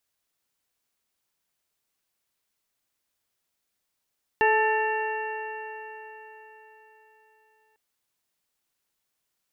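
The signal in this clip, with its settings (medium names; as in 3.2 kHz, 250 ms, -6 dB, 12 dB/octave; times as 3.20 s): stretched partials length 3.35 s, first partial 433 Hz, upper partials 1.5/-17.5/-0.5/-20/-6.5 dB, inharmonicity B 0.0031, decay 4.20 s, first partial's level -22 dB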